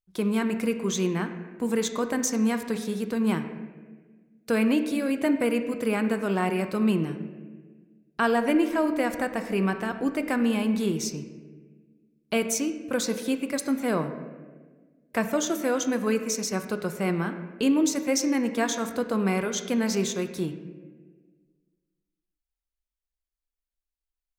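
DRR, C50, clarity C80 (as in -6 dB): 7.5 dB, 9.5 dB, 10.5 dB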